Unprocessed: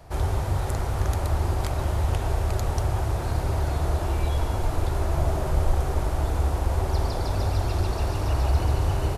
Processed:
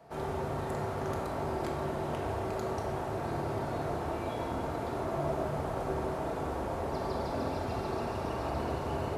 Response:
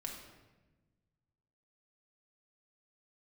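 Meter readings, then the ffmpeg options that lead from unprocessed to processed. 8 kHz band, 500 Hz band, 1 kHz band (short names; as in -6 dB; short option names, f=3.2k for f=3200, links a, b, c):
-12.5 dB, -1.5 dB, -3.0 dB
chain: -filter_complex "[0:a]highshelf=f=2.7k:g=-11,acrossover=split=4400[a][b];[a]highpass=190[c];[c][b]amix=inputs=2:normalize=0[d];[1:a]atrim=start_sample=2205[e];[d][e]afir=irnorm=-1:irlink=0"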